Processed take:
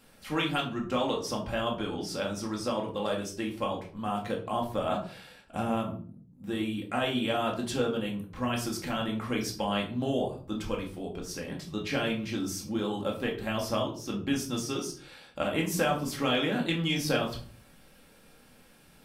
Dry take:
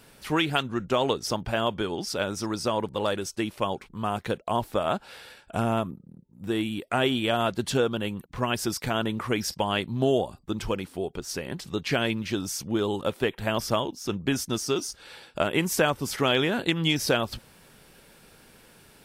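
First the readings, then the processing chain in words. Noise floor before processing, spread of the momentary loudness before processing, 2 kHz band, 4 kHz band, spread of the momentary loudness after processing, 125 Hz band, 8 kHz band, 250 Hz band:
-55 dBFS, 9 LU, -4.5 dB, -4.5 dB, 9 LU, -4.0 dB, -5.0 dB, -2.0 dB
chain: shoebox room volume 370 m³, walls furnished, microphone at 2.2 m; gain -8 dB

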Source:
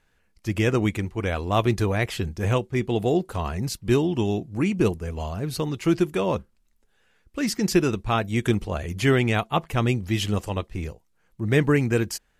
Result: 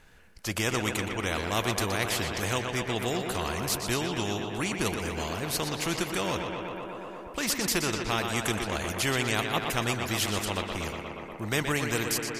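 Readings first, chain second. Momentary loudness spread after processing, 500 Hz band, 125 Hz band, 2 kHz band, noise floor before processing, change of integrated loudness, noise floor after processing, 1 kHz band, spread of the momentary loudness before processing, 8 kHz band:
7 LU, -7.0 dB, -9.5 dB, 0.0 dB, -66 dBFS, -5.0 dB, -42 dBFS, -2.0 dB, 9 LU, +5.5 dB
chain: tape echo 0.121 s, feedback 81%, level -8.5 dB, low-pass 4100 Hz; spectral compressor 2:1; gain -5 dB

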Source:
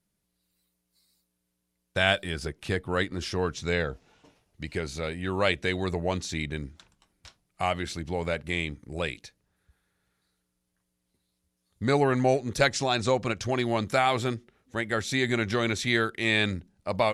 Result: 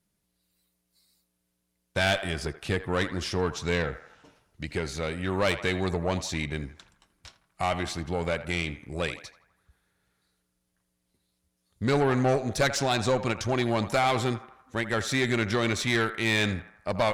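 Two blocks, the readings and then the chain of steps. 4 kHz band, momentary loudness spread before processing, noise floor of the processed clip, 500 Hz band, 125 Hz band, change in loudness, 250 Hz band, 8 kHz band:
-0.5 dB, 10 LU, -78 dBFS, 0.0 dB, +1.5 dB, 0.0 dB, +0.5 dB, +2.0 dB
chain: narrowing echo 82 ms, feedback 60%, band-pass 1100 Hz, level -12.5 dB; tube stage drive 20 dB, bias 0.4; gain +3 dB

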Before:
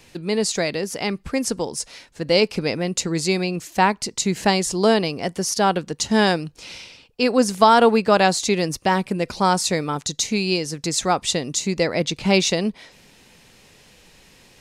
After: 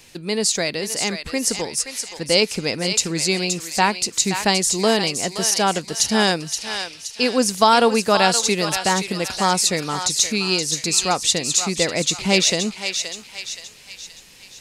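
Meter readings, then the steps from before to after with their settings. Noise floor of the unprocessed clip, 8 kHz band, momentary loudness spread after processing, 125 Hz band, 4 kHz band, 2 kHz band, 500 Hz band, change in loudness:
-53 dBFS, +7.0 dB, 10 LU, -2.0 dB, +5.0 dB, +2.0 dB, -1.5 dB, +1.5 dB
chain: high shelf 2600 Hz +8.5 dB; on a send: thinning echo 0.523 s, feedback 49%, high-pass 1100 Hz, level -6 dB; on the sum: gain -2 dB

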